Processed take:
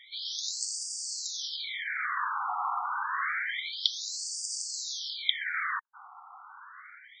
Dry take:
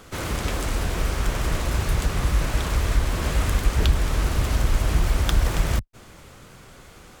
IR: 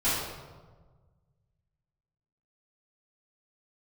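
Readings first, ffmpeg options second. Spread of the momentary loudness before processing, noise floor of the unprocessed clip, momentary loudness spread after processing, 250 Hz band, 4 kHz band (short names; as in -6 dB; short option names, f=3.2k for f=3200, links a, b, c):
4 LU, -47 dBFS, 19 LU, under -40 dB, +1.5 dB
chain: -af "asuperstop=centerf=2700:order=20:qfactor=3.8,afftfilt=real='re*between(b*sr/1024,980*pow(6500/980,0.5+0.5*sin(2*PI*0.28*pts/sr))/1.41,980*pow(6500/980,0.5+0.5*sin(2*PI*0.28*pts/sr))*1.41)':imag='im*between(b*sr/1024,980*pow(6500/980,0.5+0.5*sin(2*PI*0.28*pts/sr))/1.41,980*pow(6500/980,0.5+0.5*sin(2*PI*0.28*pts/sr))*1.41)':win_size=1024:overlap=0.75,volume=6dB"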